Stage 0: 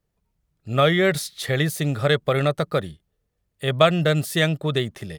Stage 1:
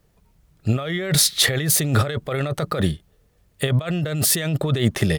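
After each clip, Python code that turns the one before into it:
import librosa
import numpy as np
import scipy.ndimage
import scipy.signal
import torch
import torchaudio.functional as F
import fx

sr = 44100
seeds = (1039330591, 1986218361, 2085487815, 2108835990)

y = fx.over_compress(x, sr, threshold_db=-29.0, ratio=-1.0)
y = y * 10.0 ** (7.5 / 20.0)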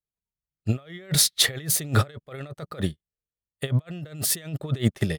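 y = fx.upward_expand(x, sr, threshold_db=-40.0, expansion=2.5)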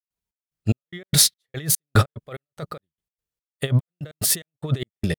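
y = fx.step_gate(x, sr, bpm=146, pattern='.xx..xx..x', floor_db=-60.0, edge_ms=4.5)
y = y * 10.0 ** (4.0 / 20.0)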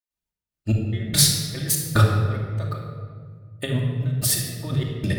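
y = fx.room_shoebox(x, sr, seeds[0], volume_m3=2400.0, walls='mixed', distance_m=2.6)
y = y * 10.0 ** (-3.5 / 20.0)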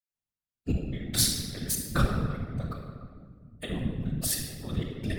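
y = fx.whisperise(x, sr, seeds[1])
y = y * 10.0 ** (-7.5 / 20.0)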